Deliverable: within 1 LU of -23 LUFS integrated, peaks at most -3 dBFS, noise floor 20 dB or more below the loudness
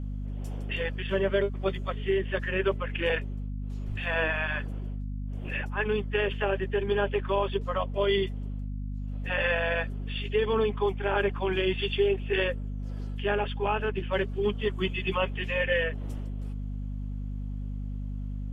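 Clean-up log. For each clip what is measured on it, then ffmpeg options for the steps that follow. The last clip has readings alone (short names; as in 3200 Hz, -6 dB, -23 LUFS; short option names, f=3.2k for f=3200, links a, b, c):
hum 50 Hz; harmonics up to 250 Hz; hum level -31 dBFS; loudness -30.0 LUFS; peak -14.0 dBFS; loudness target -23.0 LUFS
-> -af "bandreject=f=50:t=h:w=6,bandreject=f=100:t=h:w=6,bandreject=f=150:t=h:w=6,bandreject=f=200:t=h:w=6,bandreject=f=250:t=h:w=6"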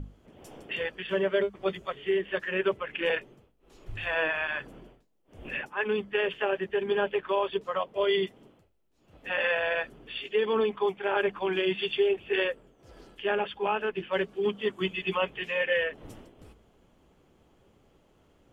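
hum none; loudness -29.5 LUFS; peak -15.5 dBFS; loudness target -23.0 LUFS
-> -af "volume=6.5dB"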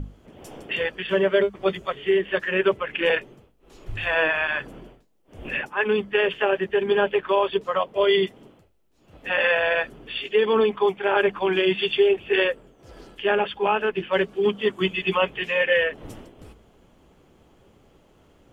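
loudness -23.0 LUFS; peak -9.0 dBFS; noise floor -58 dBFS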